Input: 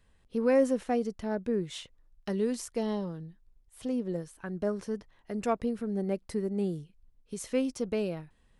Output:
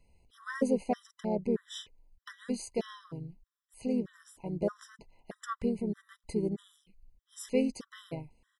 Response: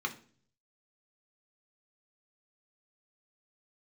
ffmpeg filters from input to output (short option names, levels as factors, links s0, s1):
-filter_complex "[0:a]asplit=2[s0][s1];[s1]asetrate=37084,aresample=44100,atempo=1.18921,volume=0.501[s2];[s0][s2]amix=inputs=2:normalize=0,afftfilt=real='re*gt(sin(2*PI*1.6*pts/sr)*(1-2*mod(floor(b*sr/1024/1000),2)),0)':imag='im*gt(sin(2*PI*1.6*pts/sr)*(1-2*mod(floor(b*sr/1024/1000),2)),0)':win_size=1024:overlap=0.75"